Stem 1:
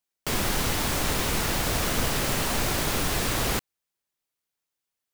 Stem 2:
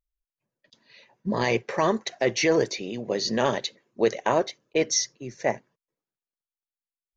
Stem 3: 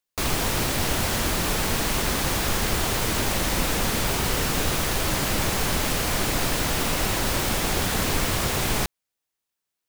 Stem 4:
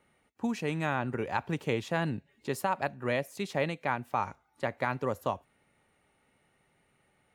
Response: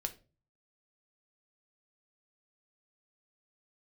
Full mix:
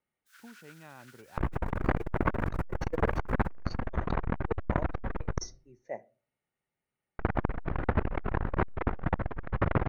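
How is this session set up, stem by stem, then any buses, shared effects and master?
−15.5 dB, 0.00 s, no send, gate on every frequency bin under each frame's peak −20 dB weak; four-pole ladder high-pass 1,400 Hz, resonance 85%; high-shelf EQ 6,800 Hz −4 dB
−15.5 dB, 0.45 s, send −3 dB, every bin expanded away from the loudest bin 1.5 to 1
+1.0 dB, 1.20 s, muted 0:05.39–0:07.19, send −13 dB, low-pass filter 1,700 Hz 24 dB per octave; low-shelf EQ 67 Hz +9 dB; compressor whose output falls as the input rises −25 dBFS, ratio −0.5
−19.5 dB, 0.00 s, no send, no processing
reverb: on, RT60 0.35 s, pre-delay 5 ms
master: saturating transformer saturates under 360 Hz

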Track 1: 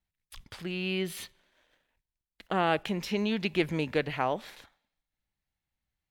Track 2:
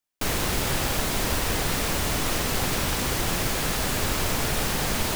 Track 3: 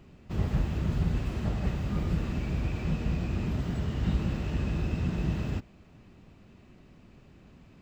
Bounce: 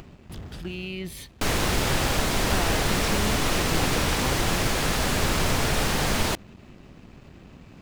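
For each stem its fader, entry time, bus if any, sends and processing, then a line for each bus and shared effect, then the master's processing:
+2.0 dB, 0.00 s, bus A, no send, phaser whose notches keep moving one way falling 1 Hz
+2.5 dB, 1.20 s, no bus, no send, high-shelf EQ 11,000 Hz −11.5 dB
−0.5 dB, 0.00 s, bus A, no send, hard clipping −29.5 dBFS, distortion −8 dB; upward compression, threshold −32 dBFS; automatic ducking −15 dB, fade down 1.55 s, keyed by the first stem
bus A: 0.0 dB, dead-zone distortion −52 dBFS; brickwall limiter −24 dBFS, peak gain reduction 9.5 dB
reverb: not used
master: no processing

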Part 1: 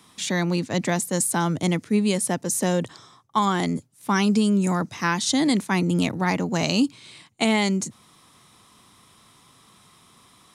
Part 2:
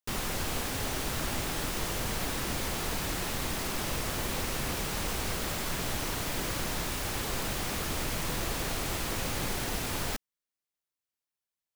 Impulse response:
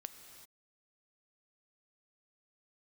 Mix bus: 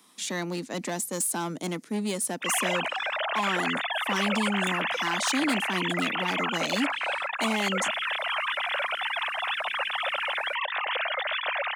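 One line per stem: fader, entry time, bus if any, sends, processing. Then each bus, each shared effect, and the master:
−5.5 dB, 0.00 s, no send, high-shelf EQ 9,900 Hz +8 dB; gain into a clipping stage and back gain 17.5 dB
+1.0 dB, 2.35 s, send −19 dB, three sine waves on the formant tracks; spectral tilt +2 dB per octave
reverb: on, pre-delay 3 ms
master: high-pass filter 200 Hz 24 dB per octave

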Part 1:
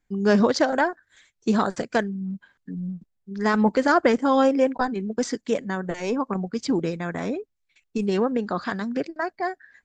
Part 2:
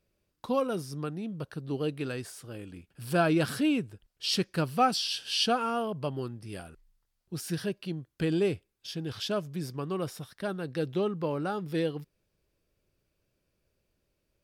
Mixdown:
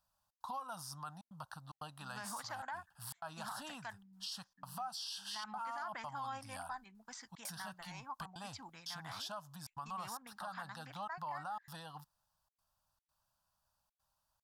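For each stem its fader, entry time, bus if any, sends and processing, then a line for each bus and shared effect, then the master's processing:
−16.5 dB, 1.90 s, no send, parametric band 430 Hz −8 dB 1.6 octaves
+1.0 dB, 0.00 s, no send, phaser with its sweep stopped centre 920 Hz, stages 4; gate pattern "xxx.xxxxxxxx.x" 149 BPM −60 dB; downward compressor 16 to 1, threshold −37 dBFS, peak gain reduction 17 dB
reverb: not used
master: low shelf with overshoot 620 Hz −11.5 dB, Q 3; brickwall limiter −34 dBFS, peak gain reduction 11.5 dB

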